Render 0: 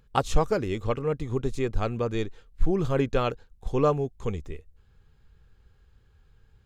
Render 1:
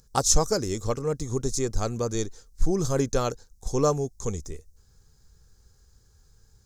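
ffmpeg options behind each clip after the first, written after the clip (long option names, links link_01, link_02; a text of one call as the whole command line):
ffmpeg -i in.wav -af "highshelf=frequency=4100:width_type=q:width=3:gain=13" out.wav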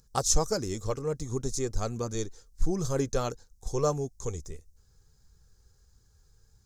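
ffmpeg -i in.wav -af "flanger=delay=0.7:depth=1.9:regen=-66:speed=1.5:shape=triangular" out.wav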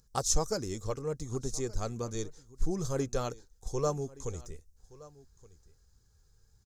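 ffmpeg -i in.wav -af "aecho=1:1:1172:0.0891,volume=-3.5dB" out.wav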